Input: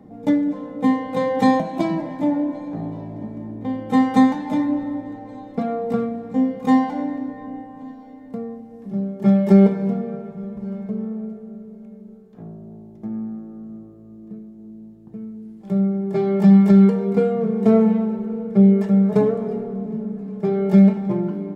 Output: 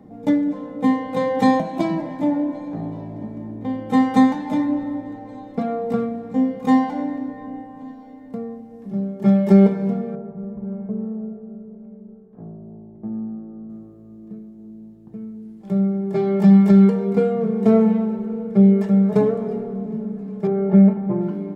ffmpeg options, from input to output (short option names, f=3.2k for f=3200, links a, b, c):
-filter_complex "[0:a]asettb=1/sr,asplit=3[a][b][c];[a]atrim=end=10.154[d];[b]atrim=start=10.15:end=13.7,asetpts=PTS-STARTPTS,afade=t=in:d=0.004:c=qsin,afade=t=out:st=3.546:d=0.004:c=qsin,lowpass=1.1k[e];[c]atrim=start=13.696[f];[d][e]acrossfade=d=0.004:c1=hsin:c2=qsin[g];[g][f]acrossfade=d=0.004:c1=qsin:c2=hsin,asettb=1/sr,asplit=3[h][i][j];[h]atrim=end=20.474[k];[i]atrim=start=20.47:end=21.21,asetpts=PTS-STARTPTS,afade=t=in:d=0.004:c=qsin,afade=t=out:st=0.736:d=0.004:c=qsin,lowpass=1.5k[l];[j]atrim=start=21.206[m];[k][l]acrossfade=d=0.004:c1=hsin:c2=qsin[n];[n][m]acrossfade=d=0.004:c1=qsin:c2=hsin"